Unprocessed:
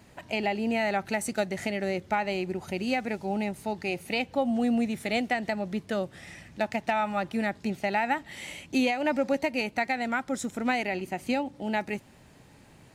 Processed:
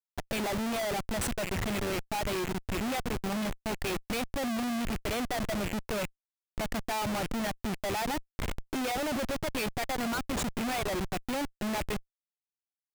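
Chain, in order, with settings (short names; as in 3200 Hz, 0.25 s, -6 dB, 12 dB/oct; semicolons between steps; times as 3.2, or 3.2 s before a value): rattling part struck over -38 dBFS, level -25 dBFS; reverb removal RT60 1.5 s; Schmitt trigger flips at -36 dBFS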